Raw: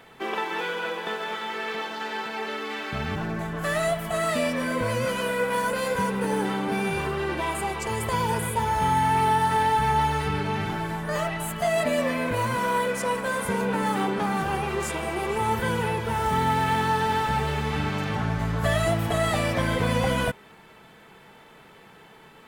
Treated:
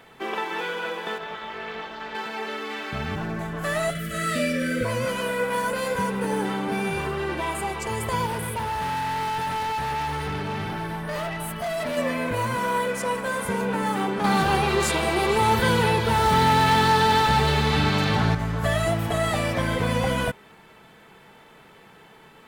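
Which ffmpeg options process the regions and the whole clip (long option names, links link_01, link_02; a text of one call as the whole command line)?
ffmpeg -i in.wav -filter_complex "[0:a]asettb=1/sr,asplit=3[link_01][link_02][link_03];[link_01]atrim=end=1.184[link_04];[link_02]atrim=start=1.18:end=2.15,asetpts=PTS-STARTPTS,afade=type=in:duration=0.004:curve=qsin,afade=type=out:start_time=0.966:duration=0.004:curve=qsin,equalizer=frequency=11000:width_type=o:width=1.5:gain=-11,tremolo=f=270:d=0.621[link_05];[link_03]atrim=start=2.146[link_06];[link_04][link_05]acrossfade=duration=0.004:curve1=hsin:curve2=qsin[link_07];[link_07][link_06]acrossfade=duration=0.004:curve1=qsin:curve2=hsin,asettb=1/sr,asplit=3[link_08][link_09][link_10];[link_08]atrim=end=3.904[link_11];[link_09]atrim=start=3.9:end=4.85,asetpts=PTS-STARTPTS,afade=type=in:duration=0.004:curve=qsin,afade=type=out:start_time=0.946:duration=0.004:curve=qsin,asuperstop=centerf=860:order=12:qfactor=1.4,asplit=2[link_12][link_13];[link_13]adelay=49,volume=-4.5dB[link_14];[link_12][link_14]amix=inputs=2:normalize=0,atrim=end_sample=41895[link_15];[link_10]atrim=start=4.846[link_16];[link_11][link_15]acrossfade=duration=0.004:curve1=hsin:curve2=qsin[link_17];[link_17][link_16]acrossfade=duration=0.004:curve1=qsin:curve2=hsin,asettb=1/sr,asplit=3[link_18][link_19][link_20];[link_18]atrim=end=8.264[link_21];[link_19]atrim=start=8.26:end=11.97,asetpts=PTS-STARTPTS,afade=type=in:duration=0.004:curve=qsin,afade=type=out:start_time=3.706:duration=0.004:curve=qsin,equalizer=frequency=7100:width_type=o:width=0.21:gain=-13,asoftclip=type=hard:threshold=-25.5dB[link_22];[link_20]atrim=start=11.966[link_23];[link_21][link_22]acrossfade=duration=0.004:curve1=hsin:curve2=qsin[link_24];[link_24][link_23]acrossfade=duration=0.004:curve1=qsin:curve2=hsin,asettb=1/sr,asplit=3[link_25][link_26][link_27];[link_25]atrim=end=14.244[link_28];[link_26]atrim=start=14.24:end=18.35,asetpts=PTS-STARTPTS,afade=type=in:duration=0.004:curve=qsin,afade=type=out:start_time=4.106:duration=0.004:curve=qsin,equalizer=frequency=4100:width_type=o:width=0.5:gain=9.5,acontrast=41,volume=14dB,asoftclip=hard,volume=-14dB[link_29];[link_27]atrim=start=18.346[link_30];[link_28][link_29]acrossfade=duration=0.004:curve1=hsin:curve2=qsin[link_31];[link_31][link_30]acrossfade=duration=0.004:curve1=qsin:curve2=hsin" out.wav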